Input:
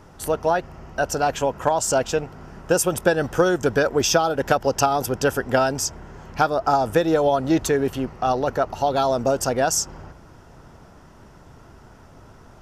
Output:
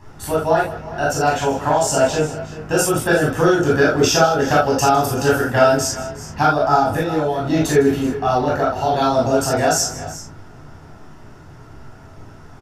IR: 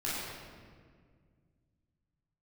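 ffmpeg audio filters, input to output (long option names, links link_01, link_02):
-filter_complex "[0:a]asettb=1/sr,asplit=3[link_01][link_02][link_03];[link_01]atrim=end=6.764[link_04];[link_02]atrim=start=6.76:end=7.4,asetpts=PTS-STARTPTS,afade=type=in:duration=0.004:curve=qsin,afade=type=out:start_time=0.636:duration=0.004:curve=qsin,acompressor=threshold=-20dB:ratio=6[link_05];[link_03]atrim=start=7.396[link_06];[link_04][link_05]acrossfade=duration=0.004:curve1=hsin:curve2=qsin[link_07];[link_07][link_06]acrossfade=duration=0.004:curve1=qsin:curve2=hsin,aecho=1:1:156|361|385:0.15|0.119|0.126[link_08];[1:a]atrim=start_sample=2205,atrim=end_sample=3969[link_09];[link_08][link_09]afir=irnorm=-1:irlink=0,volume=1dB"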